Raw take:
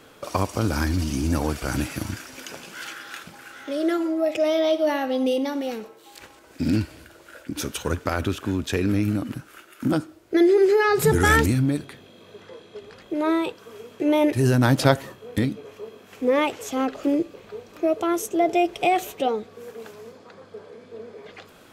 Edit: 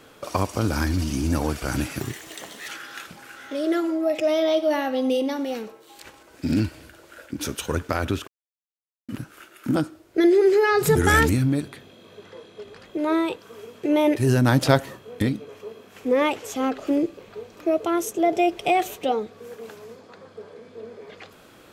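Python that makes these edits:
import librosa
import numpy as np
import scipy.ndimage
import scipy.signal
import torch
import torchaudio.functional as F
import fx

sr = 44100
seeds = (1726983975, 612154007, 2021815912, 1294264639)

y = fx.edit(x, sr, fx.speed_span(start_s=2.0, length_s=0.85, speed=1.24),
    fx.silence(start_s=8.44, length_s=0.81), tone=tone)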